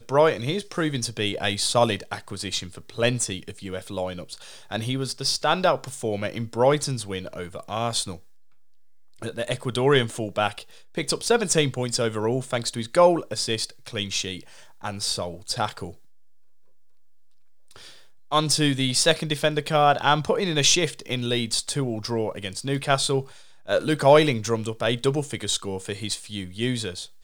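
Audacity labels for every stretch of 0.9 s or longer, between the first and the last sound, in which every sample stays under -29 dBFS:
8.150000	9.220000	silence
15.890000	18.320000	silence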